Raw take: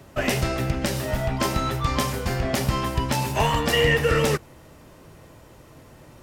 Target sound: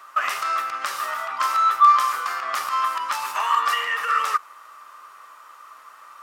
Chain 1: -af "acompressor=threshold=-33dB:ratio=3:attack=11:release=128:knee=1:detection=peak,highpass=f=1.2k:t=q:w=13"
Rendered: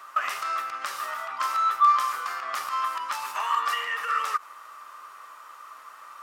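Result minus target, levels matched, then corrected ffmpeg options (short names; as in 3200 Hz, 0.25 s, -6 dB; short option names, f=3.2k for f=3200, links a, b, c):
compressor: peak gain reduction +5 dB
-af "acompressor=threshold=-25.5dB:ratio=3:attack=11:release=128:knee=1:detection=peak,highpass=f=1.2k:t=q:w=13"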